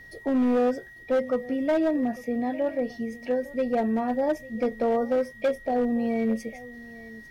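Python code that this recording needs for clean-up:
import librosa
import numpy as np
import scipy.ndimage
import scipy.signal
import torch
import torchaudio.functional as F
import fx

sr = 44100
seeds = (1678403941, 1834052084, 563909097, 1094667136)

y = fx.fix_declip(x, sr, threshold_db=-19.0)
y = fx.notch(y, sr, hz=1900.0, q=30.0)
y = fx.fix_echo_inverse(y, sr, delay_ms=850, level_db=-19.5)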